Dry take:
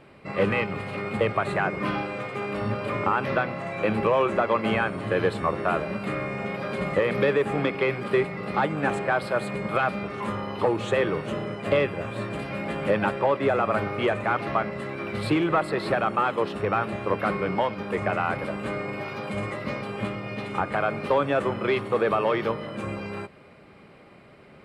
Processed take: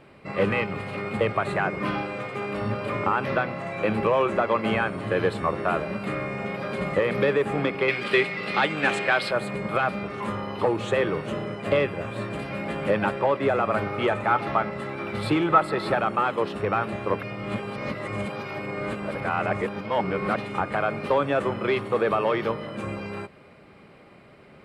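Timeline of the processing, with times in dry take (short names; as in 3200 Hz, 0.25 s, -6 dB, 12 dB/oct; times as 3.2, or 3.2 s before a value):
7.88–9.31 weighting filter D
13.93–16 small resonant body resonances 860/1300/3500 Hz, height 12 dB, ringing for 90 ms
17.23–20.36 reverse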